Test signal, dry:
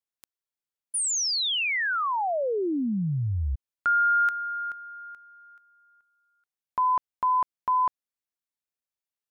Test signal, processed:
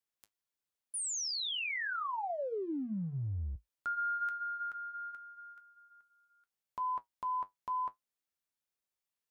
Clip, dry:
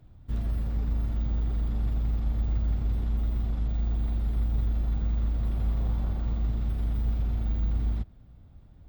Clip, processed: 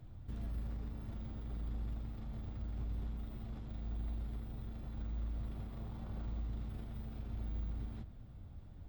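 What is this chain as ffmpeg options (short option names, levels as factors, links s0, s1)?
-af "acompressor=threshold=0.00891:ratio=2.5:attack=0.29:release=24:detection=rms,flanger=delay=8.6:depth=2.1:regen=-59:speed=0.86:shape=triangular,volume=1.68"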